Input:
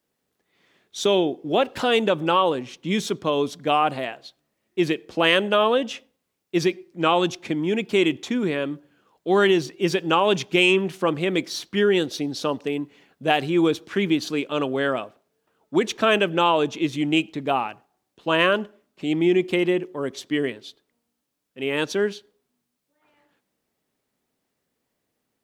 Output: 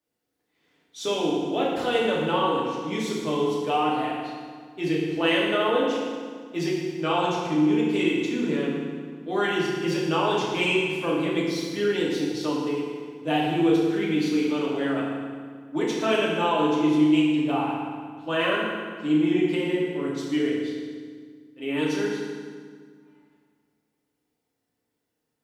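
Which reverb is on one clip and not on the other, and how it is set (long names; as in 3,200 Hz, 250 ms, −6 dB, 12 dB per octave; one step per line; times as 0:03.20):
feedback delay network reverb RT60 1.8 s, low-frequency decay 1.35×, high-frequency decay 0.8×, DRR −6 dB
level −10.5 dB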